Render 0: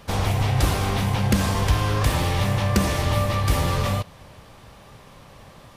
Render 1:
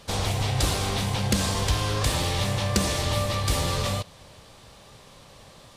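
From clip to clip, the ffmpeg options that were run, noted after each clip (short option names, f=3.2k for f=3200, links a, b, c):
-af "equalizer=f=500:t=o:w=1:g=3,equalizer=f=4k:t=o:w=1:g=7,equalizer=f=8k:t=o:w=1:g=8,volume=-5dB"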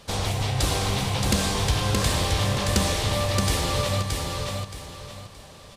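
-af "aecho=1:1:623|1246|1869|2492:0.668|0.201|0.0602|0.018"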